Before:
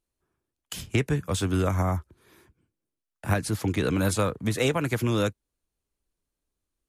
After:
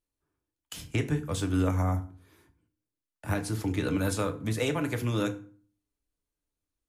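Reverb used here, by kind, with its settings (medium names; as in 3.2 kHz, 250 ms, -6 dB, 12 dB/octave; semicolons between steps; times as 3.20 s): FDN reverb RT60 0.43 s, low-frequency decay 1.4×, high-frequency decay 0.75×, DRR 6 dB; trim -5.5 dB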